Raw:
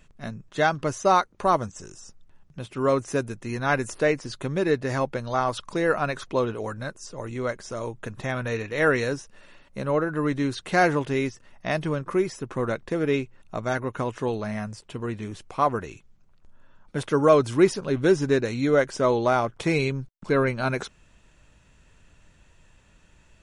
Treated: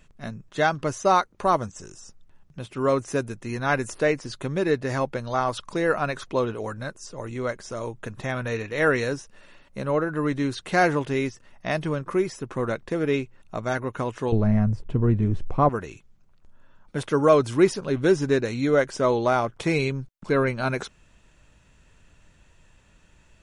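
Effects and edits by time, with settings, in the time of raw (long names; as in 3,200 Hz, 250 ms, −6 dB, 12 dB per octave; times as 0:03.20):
0:14.32–0:15.69: spectral tilt −4.5 dB per octave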